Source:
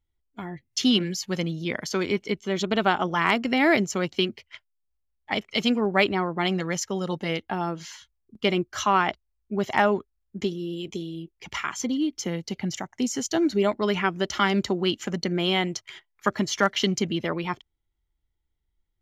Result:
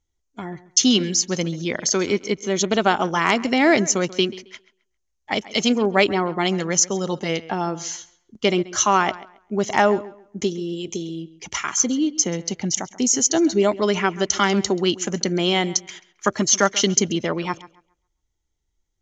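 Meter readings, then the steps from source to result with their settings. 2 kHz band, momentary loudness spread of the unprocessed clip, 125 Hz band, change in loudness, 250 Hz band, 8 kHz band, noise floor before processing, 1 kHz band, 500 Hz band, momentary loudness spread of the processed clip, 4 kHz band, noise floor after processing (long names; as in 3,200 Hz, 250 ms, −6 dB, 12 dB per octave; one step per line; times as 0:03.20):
+2.5 dB, 11 LU, +2.5 dB, +5.0 dB, +3.5 dB, +15.0 dB, −76 dBFS, +3.5 dB, +5.0 dB, 12 LU, +4.5 dB, −74 dBFS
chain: low-pass with resonance 6,400 Hz, resonance Q 6.7
parametric band 470 Hz +4 dB 2.3 octaves
tape delay 135 ms, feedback 26%, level −17 dB, low-pass 3,800 Hz
level +1 dB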